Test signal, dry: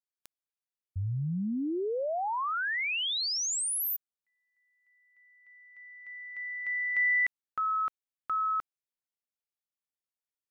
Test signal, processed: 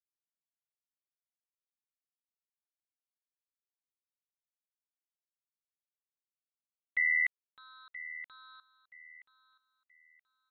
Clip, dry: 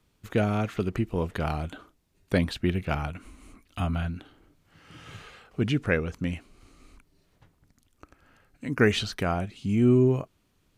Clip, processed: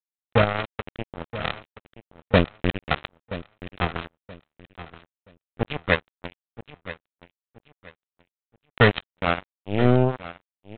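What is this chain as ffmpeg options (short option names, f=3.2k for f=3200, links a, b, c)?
-af "adynamicequalizer=threshold=0.0141:dfrequency=300:dqfactor=1:tfrequency=300:tqfactor=1:attack=5:release=100:ratio=0.417:range=2.5:mode=cutabove:tftype=bell,aecho=1:1:1.6:0.95,aresample=8000,acrusher=bits=2:mix=0:aa=0.5,aresample=44100,aecho=1:1:976|1952|2928:0.178|0.0498|0.0139,volume=3.5dB"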